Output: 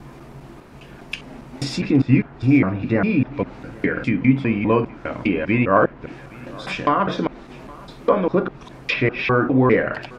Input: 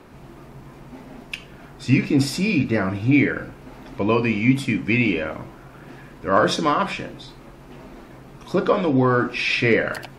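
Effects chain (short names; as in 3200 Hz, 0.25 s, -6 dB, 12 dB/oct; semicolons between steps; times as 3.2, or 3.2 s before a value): slices in reverse order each 0.202 s, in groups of 4; treble ducked by the level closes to 1900 Hz, closed at -18 dBFS; echo 0.817 s -23 dB; gain +2 dB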